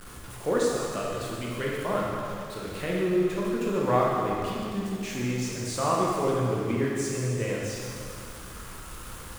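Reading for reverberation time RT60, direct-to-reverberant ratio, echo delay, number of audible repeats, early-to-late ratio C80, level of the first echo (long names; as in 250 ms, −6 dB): 2.5 s, −4.5 dB, no echo audible, no echo audible, 0.0 dB, no echo audible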